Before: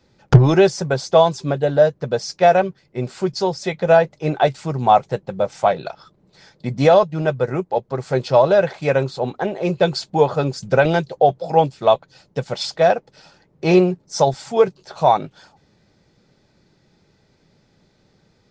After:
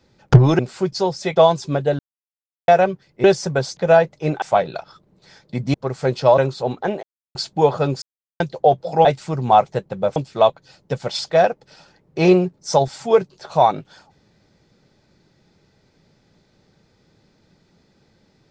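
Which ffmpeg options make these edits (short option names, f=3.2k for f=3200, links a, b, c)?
-filter_complex "[0:a]asplit=16[a][b][c][d][e][f][g][h][i][j][k][l][m][n][o][p];[a]atrim=end=0.592[q];[b]atrim=start=2.998:end=3.772[r];[c]atrim=start=1.118:end=1.75,asetpts=PTS-STARTPTS,afade=t=out:st=0.628:d=0.004:c=hsin[s];[d]atrim=start=1.75:end=2.44,asetpts=PTS-STARTPTS,volume=0[t];[e]atrim=start=2.44:end=3.002,asetpts=PTS-STARTPTS,afade=t=in:d=0.004:c=hsin[u];[f]atrim=start=0.588:end=1.122[v];[g]atrim=start=3.768:end=4.422[w];[h]atrim=start=5.528:end=6.852[x];[i]atrim=start=7.818:end=8.462[y];[j]atrim=start=8.948:end=9.6,asetpts=PTS-STARTPTS,afade=t=out:st=0.648:d=0.004:c=hsin[z];[k]atrim=start=9.6:end=9.92,asetpts=PTS-STARTPTS,volume=0[aa];[l]atrim=start=9.92:end=10.59,asetpts=PTS-STARTPTS,afade=t=in:d=0.004:c=hsin,afade=t=out:st=0.666:d=0.004:c=hsin[ab];[m]atrim=start=10.59:end=10.97,asetpts=PTS-STARTPTS,volume=0[ac];[n]atrim=start=10.97:end=11.622,asetpts=PTS-STARTPTS,afade=t=in:d=0.004:c=hsin[ad];[o]atrim=start=4.418:end=5.532[ae];[p]atrim=start=11.618[af];[q][r]acrossfade=d=0.004:c1=hsin:c2=hsin[ag];[s][t][u]concat=n=3:v=0:a=1[ah];[ag][ah]acrossfade=d=0.004:c1=hsin:c2=hsin[ai];[ai][v]acrossfade=d=0.004:c1=hsin:c2=hsin[aj];[aj][w]acrossfade=d=0.004:c1=hsin:c2=hsin[ak];[ak][x]acrossfade=d=0.004:c1=hsin:c2=hsin[al];[al][y]acrossfade=d=0.004:c1=hsin:c2=hsin[am];[z][aa][ab][ac][ad]concat=n=5:v=0:a=1[an];[am][an]acrossfade=d=0.004:c1=hsin:c2=hsin[ao];[ao][ae]acrossfade=d=0.004:c1=hsin:c2=hsin[ap];[ap][af]acrossfade=d=0.004:c1=hsin:c2=hsin"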